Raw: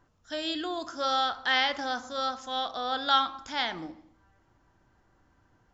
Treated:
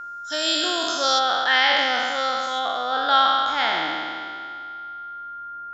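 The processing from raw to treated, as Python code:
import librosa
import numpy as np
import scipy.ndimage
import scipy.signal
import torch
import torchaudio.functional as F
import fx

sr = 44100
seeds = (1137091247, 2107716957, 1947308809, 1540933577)

y = fx.spec_trails(x, sr, decay_s=2.22)
y = fx.bass_treble(y, sr, bass_db=-9, treble_db=fx.steps((0.0, 11.0), (1.18, -3.0), (2.58, -10.0)))
y = y + 10.0 ** (-37.0 / 20.0) * np.sin(2.0 * np.pi * 1400.0 * np.arange(len(y)) / sr)
y = y * librosa.db_to_amplitude(4.5)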